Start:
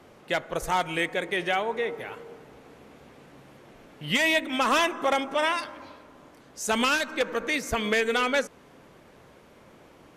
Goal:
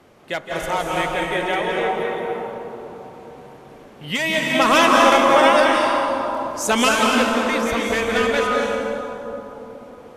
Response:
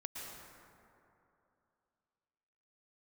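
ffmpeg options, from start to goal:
-filter_complex "[0:a]asettb=1/sr,asplit=3[link_01][link_02][link_03];[link_01]atrim=end=4.554[link_04];[link_02]atrim=start=4.55:end=6.89,asetpts=PTS-STARTPTS,afade=type=in:duration=0.004:curve=qsin,afade=type=out:start_time=2.336:duration=0.004:curve=qsin,acontrast=53[link_05];[link_03]atrim=start=6.886[link_06];[link_04][link_05]acrossfade=duration=0.004:curve1=hsin:curve2=qsin[link_07];[link_07][link_06]acrossfade=duration=0.004:curve1=qsin:curve2=hsin[link_08];[1:a]atrim=start_sample=2205,asetrate=29106,aresample=44100[link_09];[link_08][link_09]afir=irnorm=-1:irlink=0,volume=4dB"

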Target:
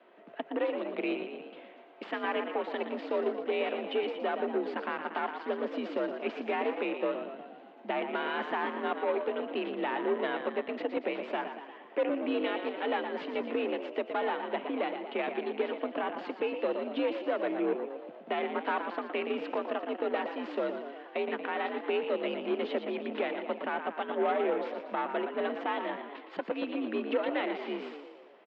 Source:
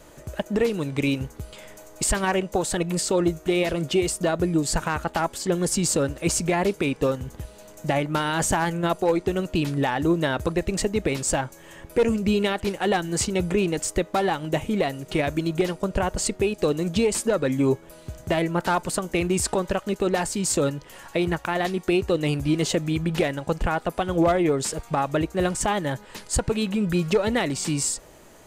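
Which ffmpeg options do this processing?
ffmpeg -i in.wav -filter_complex "[0:a]asplit=8[link_01][link_02][link_03][link_04][link_05][link_06][link_07][link_08];[link_02]adelay=117,afreqshift=42,volume=-8dB[link_09];[link_03]adelay=234,afreqshift=84,volume=-12.7dB[link_10];[link_04]adelay=351,afreqshift=126,volume=-17.5dB[link_11];[link_05]adelay=468,afreqshift=168,volume=-22.2dB[link_12];[link_06]adelay=585,afreqshift=210,volume=-26.9dB[link_13];[link_07]adelay=702,afreqshift=252,volume=-31.7dB[link_14];[link_08]adelay=819,afreqshift=294,volume=-36.4dB[link_15];[link_01][link_09][link_10][link_11][link_12][link_13][link_14][link_15]amix=inputs=8:normalize=0,aeval=exprs='0.376*(cos(1*acos(clip(val(0)/0.376,-1,1)))-cos(1*PI/2))+0.0266*(cos(8*acos(clip(val(0)/0.376,-1,1)))-cos(8*PI/2))':channel_layout=same,highpass=frequency=190:width_type=q:width=0.5412,highpass=frequency=190:width_type=q:width=1.307,lowpass=frequency=3200:width_type=q:width=0.5176,lowpass=frequency=3200:width_type=q:width=0.7071,lowpass=frequency=3200:width_type=q:width=1.932,afreqshift=59,volume=-9dB" out.wav

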